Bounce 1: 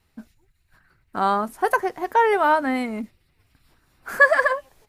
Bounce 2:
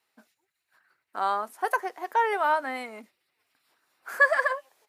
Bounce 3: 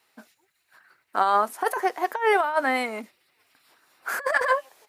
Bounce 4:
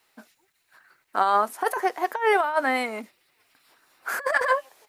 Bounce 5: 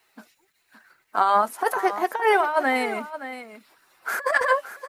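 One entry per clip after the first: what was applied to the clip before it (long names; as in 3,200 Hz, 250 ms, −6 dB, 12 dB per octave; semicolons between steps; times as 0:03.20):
high-pass filter 510 Hz 12 dB per octave; level −5 dB
compressor whose output falls as the input rises −27 dBFS, ratio −0.5; level +6 dB
bit-depth reduction 12 bits, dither none
spectral magnitudes quantised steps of 15 dB; single-tap delay 570 ms −12.5 dB; level +2 dB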